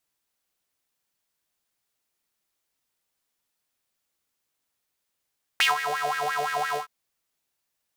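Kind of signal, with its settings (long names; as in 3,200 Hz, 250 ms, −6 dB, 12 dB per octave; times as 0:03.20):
subtractive patch with filter wobble D3, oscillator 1 square, noise −29 dB, filter highpass, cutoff 660 Hz, Q 5.9, filter envelope 1.5 octaves, attack 3.5 ms, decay 0.14 s, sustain −12.5 dB, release 0.11 s, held 1.16 s, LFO 5.8 Hz, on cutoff 0.8 octaves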